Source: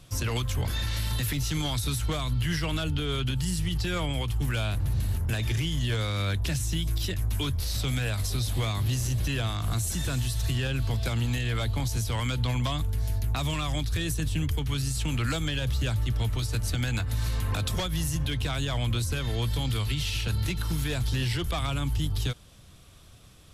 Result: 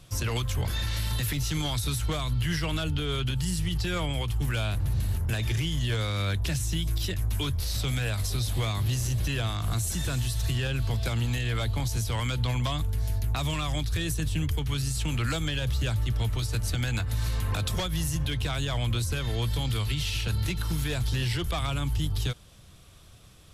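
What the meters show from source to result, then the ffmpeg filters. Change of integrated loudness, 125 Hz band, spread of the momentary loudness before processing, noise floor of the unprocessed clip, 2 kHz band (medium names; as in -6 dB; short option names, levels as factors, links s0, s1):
0.0 dB, 0.0 dB, 1 LU, -50 dBFS, 0.0 dB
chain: -af "equalizer=f=260:w=6.2:g=-4"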